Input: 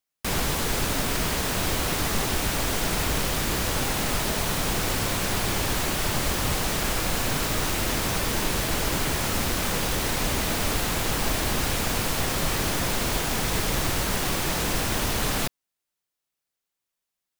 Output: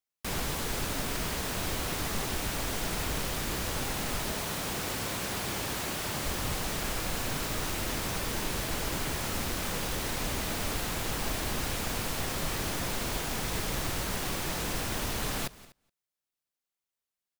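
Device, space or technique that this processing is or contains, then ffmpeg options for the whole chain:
ducked delay: -filter_complex "[0:a]asettb=1/sr,asplit=3[link_01][link_02][link_03];[link_01]atrim=end=4.384[link_04];[link_02]atrim=start=4.38:end=6.24,asetpts=PTS-STARTPTS,afade=type=in:duration=0.004:curve=qsin,afade=type=out:start_time=1.856:duration=0.004:curve=qsin,highpass=frequency=100:poles=1[link_05];[link_03]atrim=start=6.236[link_06];[link_04][link_05]acrossfade=duration=0.004:curve1=hsin:curve2=qsin[link_07];[link_07][link_06]acrossfade=duration=0.004:curve1=qsin:curve2=hsin,asplit=3[link_08][link_09][link_10];[link_09]adelay=175,volume=-8dB[link_11];[link_10]apad=whole_len=774637[link_12];[link_11][link_12]sidechaincompress=threshold=-44dB:ratio=4:attack=9.8:release=279[link_13];[link_08][link_13]amix=inputs=2:normalize=0,aecho=1:1:245:0.075,volume=-7dB"

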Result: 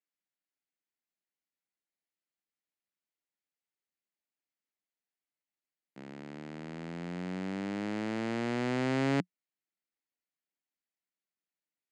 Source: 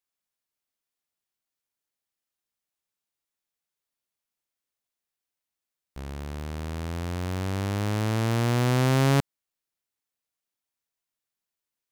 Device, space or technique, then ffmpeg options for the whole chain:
television speaker: -af "highpass=frequency=170:width=0.5412,highpass=frequency=170:width=1.3066,equalizer=frequency=180:width_type=q:width=4:gain=7,equalizer=frequency=300:width_type=q:width=4:gain=5,equalizer=frequency=1100:width_type=q:width=4:gain=-5,equalizer=frequency=2000:width_type=q:width=4:gain=4,equalizer=frequency=3600:width_type=q:width=4:gain=-5,equalizer=frequency=5700:width_type=q:width=4:gain=-9,lowpass=frequency=6800:width=0.5412,lowpass=frequency=6800:width=1.3066,volume=-6.5dB"

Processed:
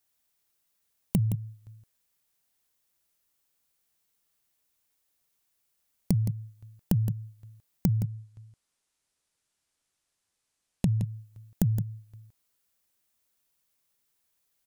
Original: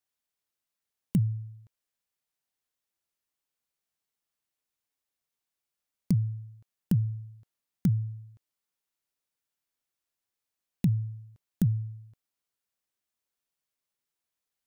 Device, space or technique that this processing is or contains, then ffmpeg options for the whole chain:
ASMR close-microphone chain: -filter_complex "[0:a]asettb=1/sr,asplit=3[link_01][link_02][link_03];[link_01]atrim=end=8.004[link_04];[link_02]atrim=start=8:end=11,asetpts=PTS-STARTPTS,afade=type=in:duration=0.004:curve=qsin,afade=type=out:start_time=2.996:duration=0.004:curve=qsin,lowpass=frequency=10000:width=0.5412,lowpass=frequency=10000:width=1.3066[link_05];[link_03]atrim=start=10.996[link_06];[link_04][link_05]acrossfade=duration=0.004:curve1=hsin:curve2=qsin[link_07];[link_07][link_06]acrossfade=duration=0.004:curve1=qsin:curve2=hsin,lowshelf=frequency=150:gain=5,acompressor=threshold=-30dB:ratio=5,highshelf=frequency=7600:gain=7.5,aecho=1:1:168:0.316,volume=6.5dB"

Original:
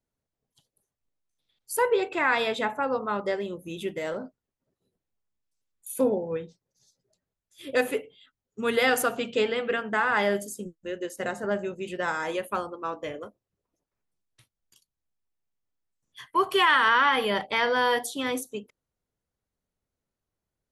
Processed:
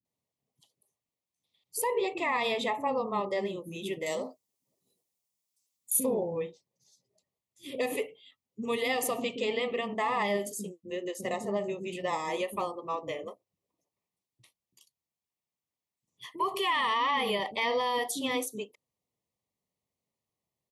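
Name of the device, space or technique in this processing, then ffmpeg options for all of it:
PA system with an anti-feedback notch: -filter_complex "[0:a]highpass=120,asuperstop=centerf=1500:order=8:qfactor=2.6,alimiter=limit=-20dB:level=0:latency=1:release=50,asettb=1/sr,asplit=3[link_01][link_02][link_03];[link_01]atrim=end=4.014[link_04];[link_02]atrim=start=4.01:end=5.95,asetpts=PTS-STARTPTS,afade=type=in:duration=0.004:curve=qsin,afade=type=out:start_time=1.936:duration=0.004:curve=qsin,bass=frequency=250:gain=-3,treble=frequency=4000:gain=12[link_05];[link_03]atrim=start=5.946[link_06];[link_04][link_05]acrossfade=duration=0.004:curve1=hsin:curve2=qsin[link_07];[link_07][link_06]acrossfade=duration=0.004:curve1=qsin:curve2=hsin,acrossover=split=330[link_08][link_09];[link_09]adelay=50[link_10];[link_08][link_10]amix=inputs=2:normalize=0"

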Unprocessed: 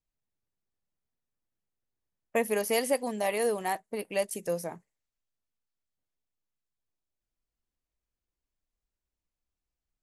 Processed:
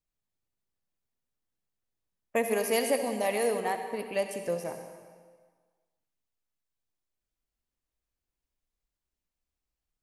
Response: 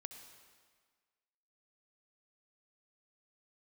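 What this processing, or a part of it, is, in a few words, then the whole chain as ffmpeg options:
stairwell: -filter_complex "[1:a]atrim=start_sample=2205[link_01];[0:a][link_01]afir=irnorm=-1:irlink=0,asettb=1/sr,asplit=3[link_02][link_03][link_04];[link_02]atrim=end=3.604[link_05];[link_03]atrim=start=3.6:end=4.65,asetpts=PTS-STARTPTS,afade=type=in:duration=0.004:curve=qsin,afade=type=out:start_time=1.046:duration=0.004:curve=qsin,highshelf=frequency=7100:gain=-9[link_06];[link_04]atrim=start=4.646[link_07];[link_05][link_06]acrossfade=duration=0.004:curve1=hsin:curve2=qsin[link_08];[link_08][link_07]acrossfade=duration=0.004:curve1=qsin:curve2=hsin,volume=5dB"

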